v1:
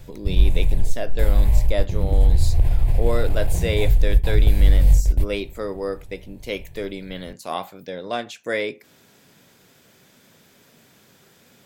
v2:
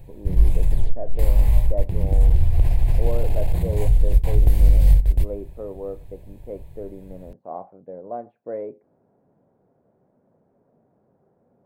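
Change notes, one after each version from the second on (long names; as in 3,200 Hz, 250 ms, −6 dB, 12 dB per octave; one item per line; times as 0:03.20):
speech: add transistor ladder low-pass 890 Hz, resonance 35%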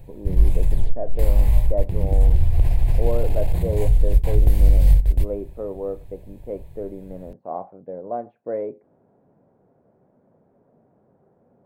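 speech +3.5 dB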